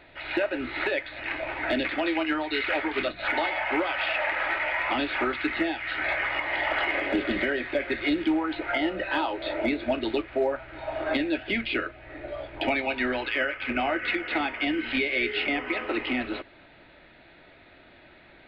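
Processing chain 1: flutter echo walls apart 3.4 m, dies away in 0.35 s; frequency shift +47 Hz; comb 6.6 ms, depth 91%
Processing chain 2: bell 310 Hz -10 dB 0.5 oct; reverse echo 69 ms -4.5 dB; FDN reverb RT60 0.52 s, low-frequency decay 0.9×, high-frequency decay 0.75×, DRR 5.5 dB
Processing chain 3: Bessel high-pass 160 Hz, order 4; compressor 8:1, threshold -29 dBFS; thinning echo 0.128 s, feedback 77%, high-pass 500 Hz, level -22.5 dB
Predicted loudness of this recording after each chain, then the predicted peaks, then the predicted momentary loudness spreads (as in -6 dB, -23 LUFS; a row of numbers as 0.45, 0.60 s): -22.0, -26.0, -32.5 LUFS; -6.5, -11.5, -17.0 dBFS; 6, 5, 5 LU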